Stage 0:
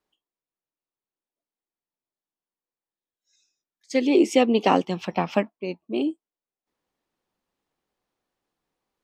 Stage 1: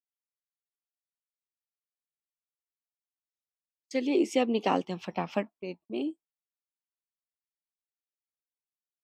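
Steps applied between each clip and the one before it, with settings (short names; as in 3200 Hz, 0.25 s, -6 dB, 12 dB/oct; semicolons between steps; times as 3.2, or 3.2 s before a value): gate -43 dBFS, range -32 dB; gain -7.5 dB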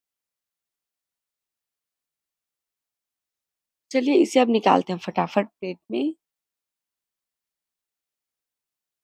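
dynamic EQ 900 Hz, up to +4 dB, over -38 dBFS, Q 1.7; gain +7.5 dB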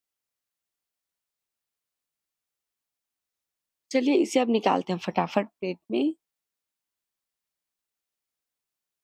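compressor, threshold -18 dBFS, peak gain reduction 7 dB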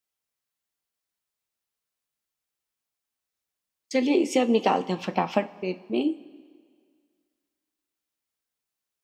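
two-slope reverb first 0.23 s, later 1.9 s, from -18 dB, DRR 8 dB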